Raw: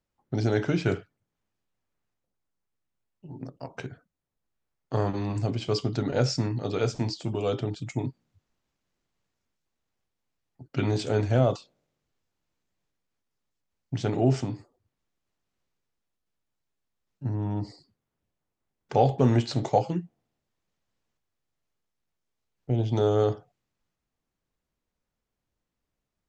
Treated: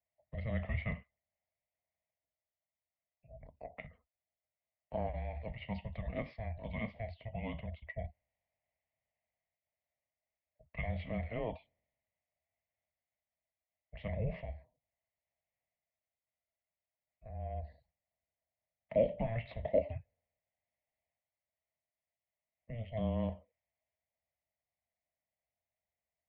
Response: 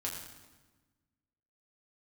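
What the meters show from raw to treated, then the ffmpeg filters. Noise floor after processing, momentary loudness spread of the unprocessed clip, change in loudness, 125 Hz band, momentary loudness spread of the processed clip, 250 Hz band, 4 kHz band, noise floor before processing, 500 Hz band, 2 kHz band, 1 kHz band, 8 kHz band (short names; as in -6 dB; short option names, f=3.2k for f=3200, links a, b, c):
under -85 dBFS, 16 LU, -12.5 dB, -14.0 dB, 18 LU, -14.0 dB, -20.0 dB, -85 dBFS, -11.0 dB, -7.5 dB, -15.5 dB, under -30 dB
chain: -filter_complex "[0:a]asplit=3[a][b][c];[a]bandpass=f=300:t=q:w=8,volume=0dB[d];[b]bandpass=f=870:t=q:w=8,volume=-6dB[e];[c]bandpass=f=2.24k:t=q:w=8,volume=-9dB[f];[d][e][f]amix=inputs=3:normalize=0,highpass=f=440:t=q:w=0.5412,highpass=f=440:t=q:w=1.307,lowpass=f=3.6k:t=q:w=0.5176,lowpass=f=3.6k:t=q:w=0.7071,lowpass=f=3.6k:t=q:w=1.932,afreqshift=-230,volume=9dB"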